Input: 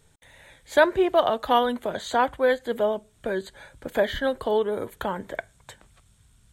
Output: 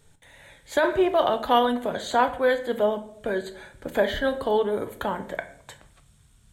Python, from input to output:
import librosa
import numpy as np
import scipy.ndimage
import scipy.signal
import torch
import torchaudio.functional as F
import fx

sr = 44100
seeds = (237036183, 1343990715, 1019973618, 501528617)

y = fx.room_shoebox(x, sr, seeds[0], volume_m3=97.0, walls='mixed', distance_m=0.3)
y = fx.over_compress(y, sr, threshold_db=-17.0, ratio=-1.0)